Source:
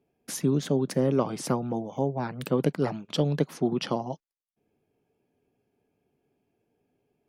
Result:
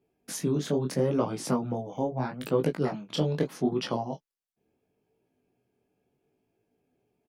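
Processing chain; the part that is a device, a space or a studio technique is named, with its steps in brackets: double-tracked vocal (doubling 16 ms -10.5 dB; chorus 0.77 Hz, delay 18 ms, depth 8 ms); trim +1.5 dB

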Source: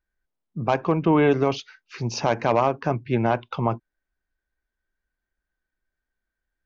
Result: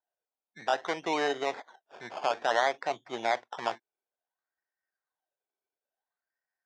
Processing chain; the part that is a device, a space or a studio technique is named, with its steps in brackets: circuit-bent sampling toy (decimation with a swept rate 18×, swing 60% 0.58 Hz; cabinet simulation 590–5200 Hz, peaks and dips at 740 Hz +5 dB, 1.2 kHz -5 dB, 1.9 kHz +4 dB, 2.8 kHz -6 dB, 4.4 kHz -6 dB); trim -5 dB

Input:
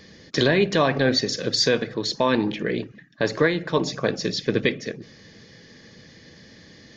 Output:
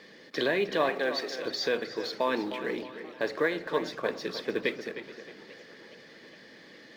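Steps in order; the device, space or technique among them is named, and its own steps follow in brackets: phone line with mismatched companding (band-pass 330–3500 Hz; companding laws mixed up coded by mu); 0.89–1.46 s: high-pass 340 Hz 12 dB/octave; tape echo 309 ms, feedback 41%, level -10 dB, low-pass 4.1 kHz; modulated delay 417 ms, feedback 70%, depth 206 cents, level -21.5 dB; trim -6.5 dB

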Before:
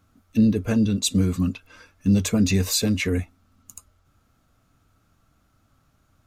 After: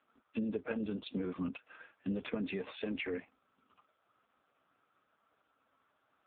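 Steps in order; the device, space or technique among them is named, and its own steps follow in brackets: voicemail (band-pass 420–2800 Hz; compression 6:1, threshold -32 dBFS, peak gain reduction 8 dB; AMR-NB 4.75 kbps 8 kHz)

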